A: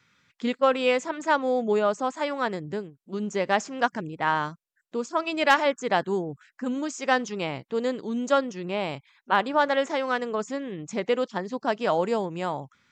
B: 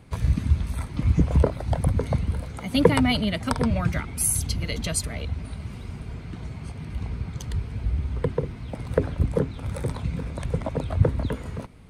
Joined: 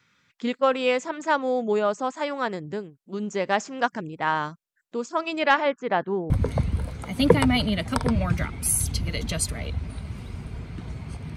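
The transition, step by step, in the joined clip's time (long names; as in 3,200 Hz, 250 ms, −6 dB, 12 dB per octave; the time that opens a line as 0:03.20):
A
0:05.38–0:06.30: low-pass filter 4,600 Hz → 1,600 Hz
0:06.30: continue with B from 0:01.85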